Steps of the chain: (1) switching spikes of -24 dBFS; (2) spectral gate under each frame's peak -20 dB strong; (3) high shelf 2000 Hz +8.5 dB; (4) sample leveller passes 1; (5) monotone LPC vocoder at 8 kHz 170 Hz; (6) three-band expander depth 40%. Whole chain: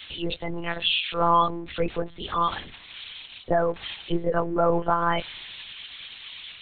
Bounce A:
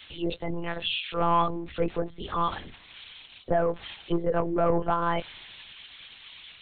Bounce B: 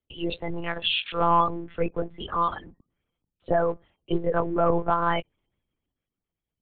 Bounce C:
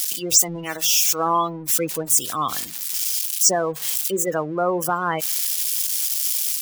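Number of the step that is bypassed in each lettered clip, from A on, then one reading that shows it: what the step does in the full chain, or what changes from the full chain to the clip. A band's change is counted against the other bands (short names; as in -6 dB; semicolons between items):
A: 3, 4 kHz band -4.5 dB; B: 1, distortion -4 dB; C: 5, 4 kHz band +3.0 dB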